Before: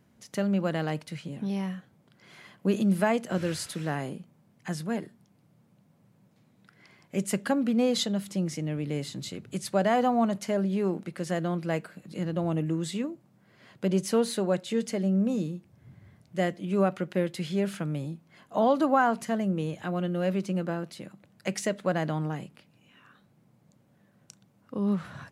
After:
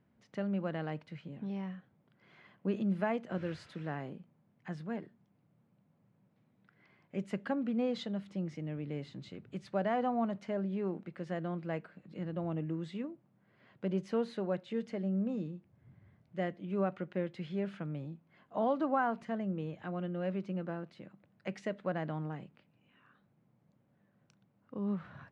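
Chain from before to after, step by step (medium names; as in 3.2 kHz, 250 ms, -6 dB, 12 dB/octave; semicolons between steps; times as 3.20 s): low-pass 2.7 kHz 12 dB/octave; trim -8 dB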